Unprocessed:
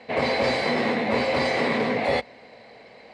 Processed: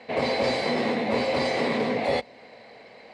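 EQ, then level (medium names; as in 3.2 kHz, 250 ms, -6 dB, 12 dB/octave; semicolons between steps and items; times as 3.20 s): dynamic bell 1.6 kHz, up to -5 dB, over -40 dBFS, Q 0.85; bass shelf 110 Hz -5.5 dB; 0.0 dB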